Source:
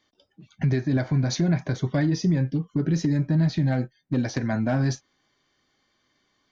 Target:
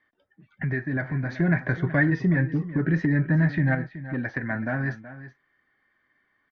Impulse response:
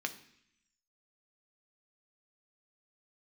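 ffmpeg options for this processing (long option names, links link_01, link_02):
-filter_complex "[0:a]asettb=1/sr,asplit=3[link_01][link_02][link_03];[link_01]atrim=end=1.404[link_04];[link_02]atrim=start=1.4:end=3.75,asetpts=PTS-STARTPTS,afade=type=in:duration=0.004:curve=qsin,afade=type=out:start_time=2.346:duration=0.004:curve=qsin,acontrast=39[link_05];[link_03]atrim=start=3.746[link_06];[link_04][link_05]acrossfade=duration=0.004:curve1=hsin:curve2=qsin[link_07];[link_07][link_06]acrossfade=duration=0.004:curve1=qsin:curve2=hsin,lowpass=frequency=1800:width_type=q:width=5.1,aecho=1:1:375:0.188,volume=-5.5dB"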